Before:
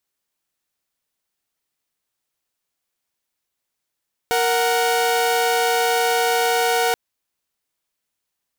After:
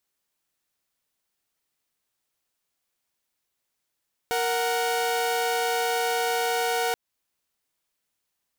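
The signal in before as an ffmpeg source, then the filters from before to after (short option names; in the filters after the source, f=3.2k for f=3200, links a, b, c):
-f lavfi -i "aevalsrc='0.141*((2*mod(466.16*t,1)-1)+(2*mod(739.99*t,1)-1))':d=2.63:s=44100"
-af "alimiter=limit=-18dB:level=0:latency=1:release=232"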